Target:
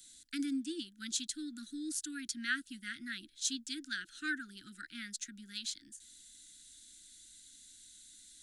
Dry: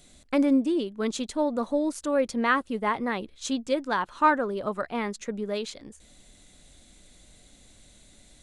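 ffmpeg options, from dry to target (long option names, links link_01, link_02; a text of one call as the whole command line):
ffmpeg -i in.wav -filter_complex "[0:a]asuperstop=centerf=690:order=20:qfactor=0.62,aexciter=amount=10.3:drive=5.1:freq=3400,acrossover=split=380 2200:gain=0.158 1 0.158[link_01][link_02][link_03];[link_01][link_02][link_03]amix=inputs=3:normalize=0,volume=-4.5dB" out.wav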